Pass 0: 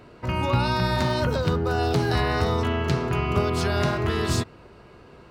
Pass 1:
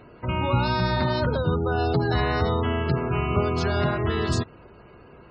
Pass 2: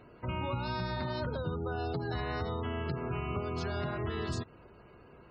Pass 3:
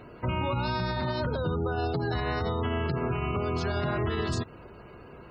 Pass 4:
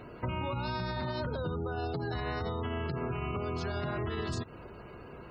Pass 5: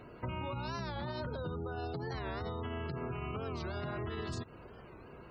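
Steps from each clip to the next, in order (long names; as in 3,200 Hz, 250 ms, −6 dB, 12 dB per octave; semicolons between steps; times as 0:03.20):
gate on every frequency bin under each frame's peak −25 dB strong
downward compressor, threshold −24 dBFS, peak gain reduction 7.5 dB; level −7 dB
brickwall limiter −28.5 dBFS, peak gain reduction 5.5 dB; level +8 dB
downward compressor, threshold −31 dBFS, peak gain reduction 6.5 dB
wow of a warped record 45 rpm, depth 160 cents; level −4.5 dB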